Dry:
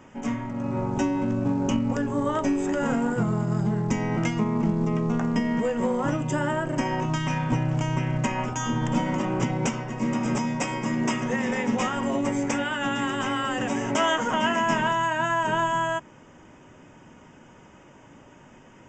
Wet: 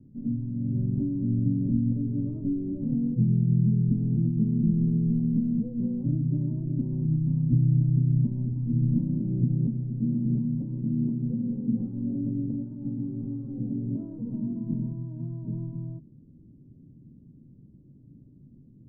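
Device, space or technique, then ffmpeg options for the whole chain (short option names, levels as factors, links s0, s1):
the neighbour's flat through the wall: -af "lowpass=f=270:w=0.5412,lowpass=f=270:w=1.3066,equalizer=f=130:t=o:w=0.55:g=6"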